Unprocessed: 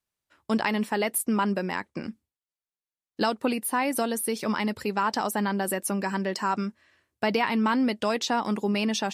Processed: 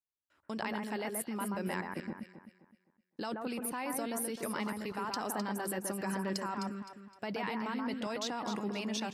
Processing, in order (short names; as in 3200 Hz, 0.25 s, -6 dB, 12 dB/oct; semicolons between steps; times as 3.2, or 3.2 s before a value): level quantiser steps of 17 dB; on a send: echo with dull and thin repeats by turns 0.129 s, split 1800 Hz, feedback 57%, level -3 dB; on the sum: gain -3.5 dB